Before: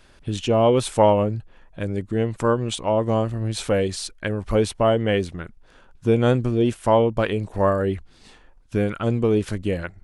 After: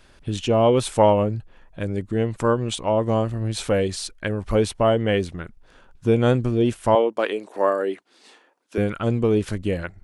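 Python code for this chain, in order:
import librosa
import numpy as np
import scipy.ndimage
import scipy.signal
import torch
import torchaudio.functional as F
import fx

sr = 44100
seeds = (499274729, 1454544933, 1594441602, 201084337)

y = fx.highpass(x, sr, hz=290.0, slope=24, at=(6.95, 8.78))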